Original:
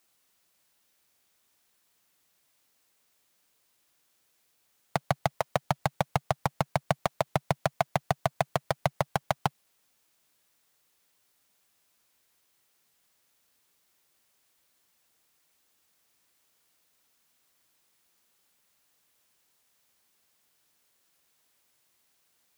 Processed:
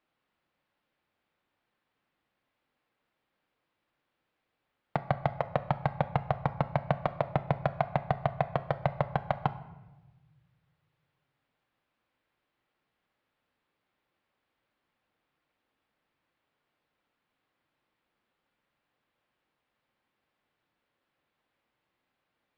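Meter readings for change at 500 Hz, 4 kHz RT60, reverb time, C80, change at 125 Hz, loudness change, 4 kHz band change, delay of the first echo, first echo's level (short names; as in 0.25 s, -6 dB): -1.0 dB, 0.75 s, 1.1 s, 16.5 dB, +1.5 dB, -1.0 dB, -10.5 dB, none, none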